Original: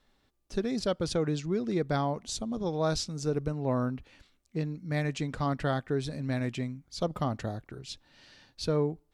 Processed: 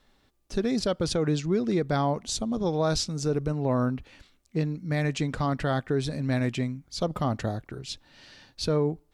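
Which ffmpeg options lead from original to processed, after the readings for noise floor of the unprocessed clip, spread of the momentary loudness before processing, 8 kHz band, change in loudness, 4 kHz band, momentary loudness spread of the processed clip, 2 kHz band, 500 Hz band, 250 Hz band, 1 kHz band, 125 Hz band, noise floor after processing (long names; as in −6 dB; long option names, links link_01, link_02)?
−71 dBFS, 8 LU, +5.0 dB, +3.5 dB, +4.5 dB, 8 LU, +3.5 dB, +3.5 dB, +4.0 dB, +3.5 dB, +4.0 dB, −66 dBFS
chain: -af "alimiter=limit=-21.5dB:level=0:latency=1:release=30,volume=5dB"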